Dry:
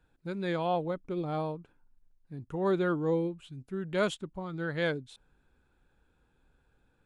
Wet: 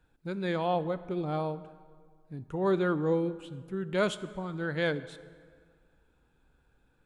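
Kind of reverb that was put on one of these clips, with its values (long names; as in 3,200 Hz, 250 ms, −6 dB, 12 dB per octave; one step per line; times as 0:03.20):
dense smooth reverb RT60 1.9 s, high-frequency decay 0.7×, DRR 14 dB
level +1 dB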